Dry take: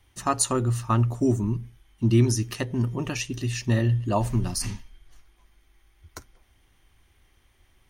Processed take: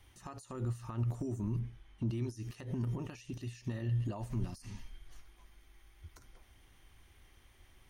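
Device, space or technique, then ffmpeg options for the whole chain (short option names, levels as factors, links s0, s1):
de-esser from a sidechain: -filter_complex "[0:a]asplit=2[s0][s1];[s1]highpass=f=5200:p=1,apad=whole_len=347974[s2];[s0][s2]sidechaincompress=threshold=0.001:ratio=5:attack=2:release=43,asettb=1/sr,asplit=3[s3][s4][s5];[s3]atrim=end=1.594[s6];[s4]atrim=start=1.59:end=2.08,asetpts=PTS-STARTPTS,afade=t=in:d=0.004:c=qsin,afade=t=out:st=0.486:d=0.004:c=qsin,aemphasis=mode=reproduction:type=50fm[s7];[s5]atrim=start=2.076[s8];[s6][s7]acrossfade=d=0.004:c1=hsin:c2=qsin[s9];[s9][s8]acrossfade=d=0.004:c1=qsin:c2=hsin"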